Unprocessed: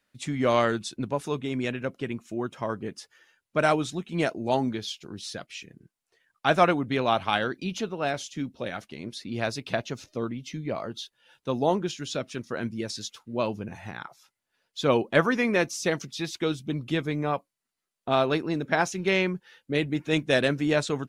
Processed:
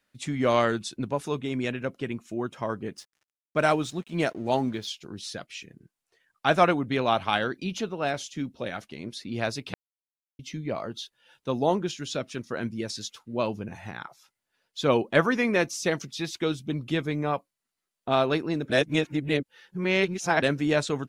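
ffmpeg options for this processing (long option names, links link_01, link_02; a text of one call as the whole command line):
ffmpeg -i in.wav -filter_complex "[0:a]asettb=1/sr,asplit=3[link_01][link_02][link_03];[link_01]atrim=end=2.974[link_04];[link_02]atrim=start=2.97:end=4.88,asetpts=PTS-STARTPTS,afade=type=in:duration=0.004:curve=qsin,afade=type=out:start_time=1.906:duration=0.004:curve=qsin,aeval=exprs='sgn(val(0))*max(abs(val(0))-0.00237,0)':channel_layout=same[link_05];[link_03]atrim=start=4.876[link_06];[link_04][link_05]acrossfade=duration=0.004:curve1=hsin:curve2=qsin[link_07];[link_07][link_06]acrossfade=duration=0.004:curve1=qsin:curve2=hsin,asplit=5[link_08][link_09][link_10][link_11][link_12];[link_08]atrim=end=9.74,asetpts=PTS-STARTPTS,afade=type=out:start_time=9.736:duration=0.004:curve=hsin[link_13];[link_09]atrim=start=9.74:end=10.39,asetpts=PTS-STARTPTS,volume=0[link_14];[link_10]atrim=start=10.39:end=18.702,asetpts=PTS-STARTPTS,afade=type=in:duration=0.004:curve=hsin[link_15];[link_11]atrim=start=18.698:end=20.422,asetpts=PTS-STARTPTS,areverse[link_16];[link_12]atrim=start=20.418[link_17];[link_13][link_14][link_15]concat=n=3:v=0:a=1[link_18];[link_18][link_16]acrossfade=duration=0.004:curve1=hsin:curve2=hsin[link_19];[link_19][link_17]acrossfade=duration=0.004:curve1=hsin:curve2=hsin" out.wav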